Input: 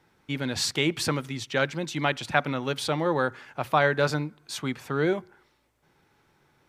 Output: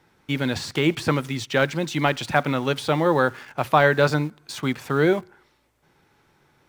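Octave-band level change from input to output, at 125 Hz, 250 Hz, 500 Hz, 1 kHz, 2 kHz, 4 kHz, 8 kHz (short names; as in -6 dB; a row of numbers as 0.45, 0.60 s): +5.5, +5.5, +5.5, +5.0, +4.0, +1.0, -2.5 dB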